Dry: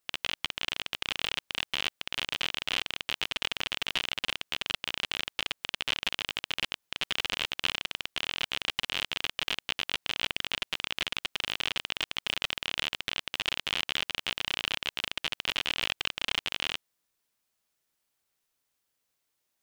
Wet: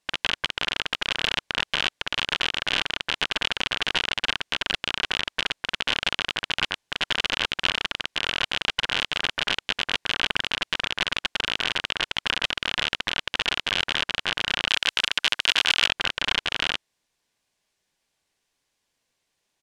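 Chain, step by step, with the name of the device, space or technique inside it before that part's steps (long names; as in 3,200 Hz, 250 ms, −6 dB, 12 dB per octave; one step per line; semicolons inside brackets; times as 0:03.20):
low-pass filter 8,100 Hz 12 dB per octave
octave pedal (pitch-shifted copies added −12 semitones −7 dB)
notch filter 1,300 Hz, Q 6.8
0:14.68–0:15.87: spectral tilt +2.5 dB per octave
level +6 dB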